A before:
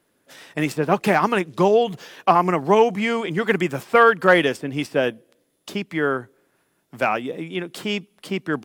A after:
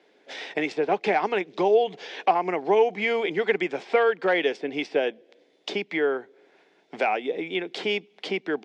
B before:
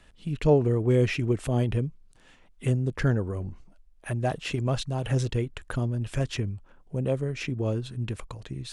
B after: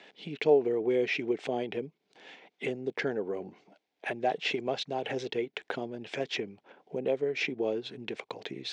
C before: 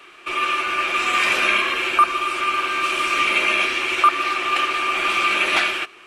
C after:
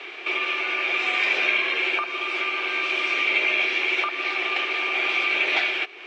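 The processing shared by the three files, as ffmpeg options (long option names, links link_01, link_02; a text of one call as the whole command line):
ffmpeg -i in.wav -af "acompressor=threshold=-38dB:ratio=2,highpass=frequency=220:width=0.5412,highpass=frequency=220:width=1.3066,equalizer=frequency=240:width_type=q:width=4:gain=-4,equalizer=frequency=430:width_type=q:width=4:gain=7,equalizer=frequency=760:width_type=q:width=4:gain=7,equalizer=frequency=1200:width_type=q:width=4:gain=-7,equalizer=frequency=2200:width_type=q:width=4:gain=7,equalizer=frequency=3500:width_type=q:width=4:gain=4,lowpass=frequency=5600:width=0.5412,lowpass=frequency=5600:width=1.3066,volume=5dB" out.wav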